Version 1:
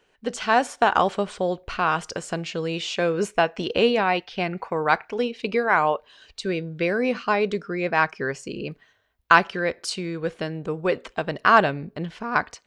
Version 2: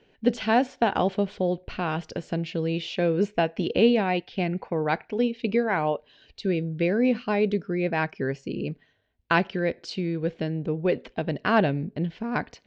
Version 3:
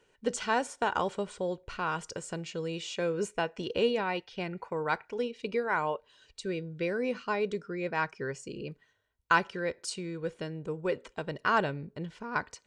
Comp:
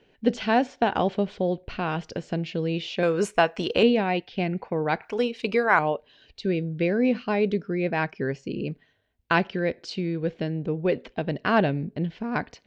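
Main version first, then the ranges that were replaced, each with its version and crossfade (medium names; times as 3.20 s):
2
3.03–3.83 s: from 1
5.02–5.79 s: from 1
not used: 3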